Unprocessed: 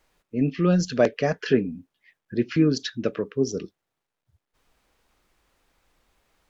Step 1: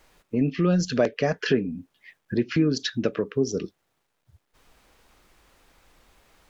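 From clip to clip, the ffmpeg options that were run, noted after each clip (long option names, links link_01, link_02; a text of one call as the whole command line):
ffmpeg -i in.wav -af "acompressor=threshold=-35dB:ratio=2,volume=8.5dB" out.wav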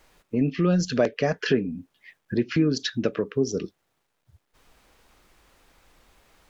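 ffmpeg -i in.wav -af anull out.wav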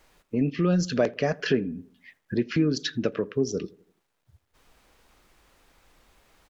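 ffmpeg -i in.wav -filter_complex "[0:a]asplit=2[link_01][link_02];[link_02]adelay=84,lowpass=frequency=1300:poles=1,volume=-22.5dB,asplit=2[link_03][link_04];[link_04]adelay=84,lowpass=frequency=1300:poles=1,volume=0.52,asplit=2[link_05][link_06];[link_06]adelay=84,lowpass=frequency=1300:poles=1,volume=0.52,asplit=2[link_07][link_08];[link_08]adelay=84,lowpass=frequency=1300:poles=1,volume=0.52[link_09];[link_01][link_03][link_05][link_07][link_09]amix=inputs=5:normalize=0,volume=-1.5dB" out.wav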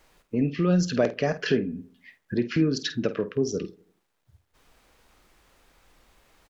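ffmpeg -i in.wav -filter_complex "[0:a]asplit=2[link_01][link_02];[link_02]adelay=50,volume=-12.5dB[link_03];[link_01][link_03]amix=inputs=2:normalize=0" out.wav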